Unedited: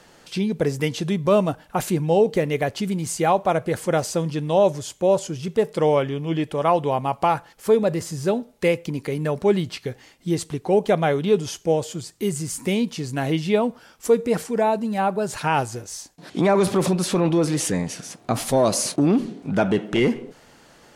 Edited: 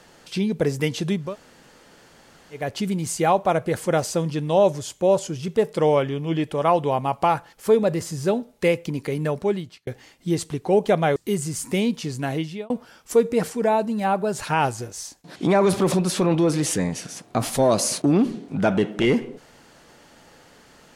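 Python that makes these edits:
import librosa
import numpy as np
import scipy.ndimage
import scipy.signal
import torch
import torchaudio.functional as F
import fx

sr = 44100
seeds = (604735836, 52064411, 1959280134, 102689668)

y = fx.edit(x, sr, fx.room_tone_fill(start_s=1.24, length_s=1.38, crossfade_s=0.24),
    fx.fade_out_span(start_s=9.26, length_s=0.61),
    fx.cut(start_s=11.16, length_s=0.94),
    fx.fade_out_span(start_s=12.95, length_s=0.69, curve='qsin'), tone=tone)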